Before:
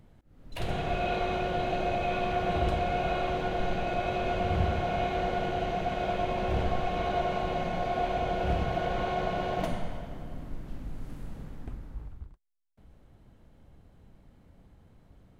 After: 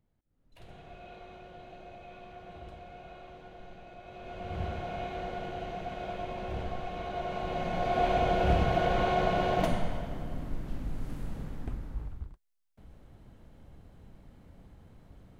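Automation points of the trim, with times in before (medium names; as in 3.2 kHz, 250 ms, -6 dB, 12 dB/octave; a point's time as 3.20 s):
4.02 s -19 dB
4.63 s -7.5 dB
7.11 s -7.5 dB
8.08 s +3 dB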